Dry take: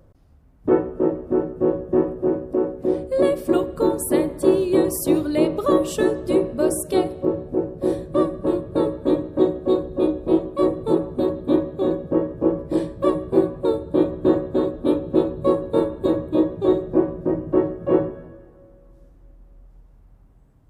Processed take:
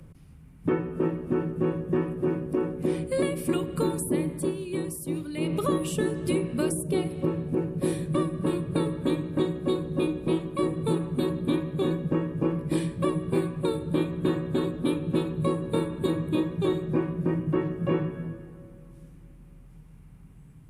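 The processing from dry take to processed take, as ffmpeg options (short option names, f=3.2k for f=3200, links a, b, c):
-filter_complex "[0:a]asplit=3[a][b][c];[a]atrim=end=4.54,asetpts=PTS-STARTPTS,afade=t=out:st=4.3:d=0.24:silence=0.199526[d];[b]atrim=start=4.54:end=5.4,asetpts=PTS-STARTPTS,volume=-14dB[e];[c]atrim=start=5.4,asetpts=PTS-STARTPTS,afade=t=in:d=0.24:silence=0.199526[f];[d][e][f]concat=n=3:v=0:a=1,equalizer=f=160:t=o:w=0.67:g=12,equalizer=f=630:t=o:w=0.67:g=-8,equalizer=f=2.5k:t=o:w=0.67:g=11,equalizer=f=10k:t=o:w=0.67:g=12,acrossover=split=85|1000[g][h][i];[g]acompressor=threshold=-53dB:ratio=4[j];[h]acompressor=threshold=-26dB:ratio=4[k];[i]acompressor=threshold=-39dB:ratio=4[l];[j][k][l]amix=inputs=3:normalize=0,bandreject=f=2.6k:w=24,volume=1.5dB"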